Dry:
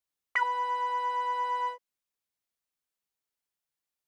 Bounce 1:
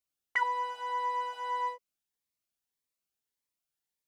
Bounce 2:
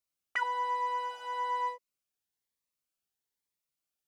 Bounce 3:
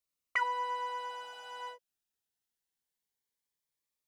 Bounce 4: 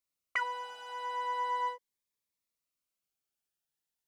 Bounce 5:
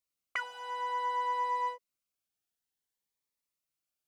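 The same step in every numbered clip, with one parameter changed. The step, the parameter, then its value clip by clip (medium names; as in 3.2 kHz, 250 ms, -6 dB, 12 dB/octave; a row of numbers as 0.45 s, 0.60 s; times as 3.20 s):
Shepard-style phaser, rate: 1.7 Hz, 1.1 Hz, 0.22 Hz, 0.39 Hz, 0.57 Hz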